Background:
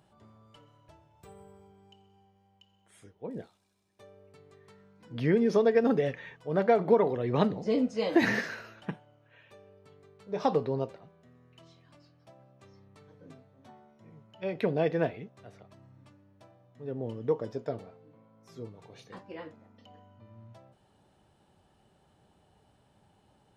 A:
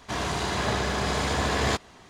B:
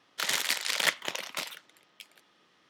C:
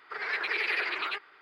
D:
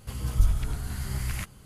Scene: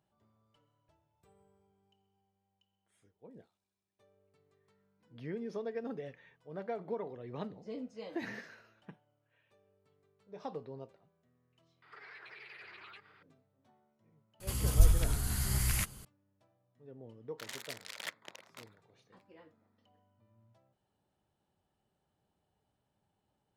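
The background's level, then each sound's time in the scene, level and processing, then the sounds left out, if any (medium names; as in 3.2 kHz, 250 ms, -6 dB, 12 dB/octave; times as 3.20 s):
background -15.5 dB
11.82 s: add C -6.5 dB + compression 5:1, threshold -44 dBFS
14.40 s: add D -1.5 dB + treble shelf 4.6 kHz +9.5 dB
17.20 s: add B -15.5 dB + local Wiener filter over 15 samples
not used: A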